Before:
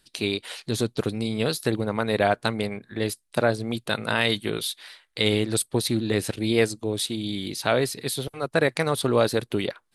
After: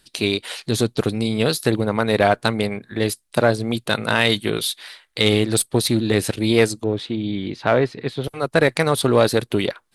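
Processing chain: 6.84–8.24 s: low-pass 2.2 kHz 12 dB/octave; in parallel at -5.5 dB: one-sided clip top -23 dBFS, bottom -11 dBFS; on the sum: trim +2 dB

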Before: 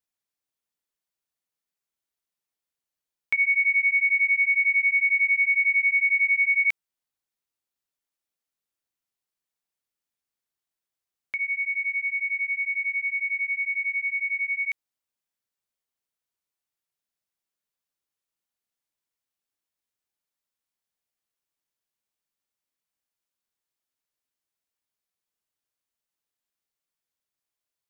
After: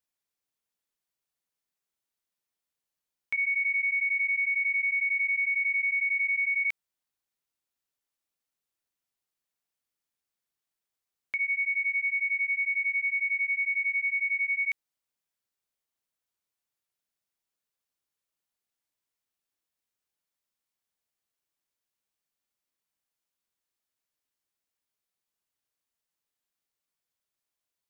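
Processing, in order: peak limiter -23 dBFS, peak gain reduction 7.5 dB

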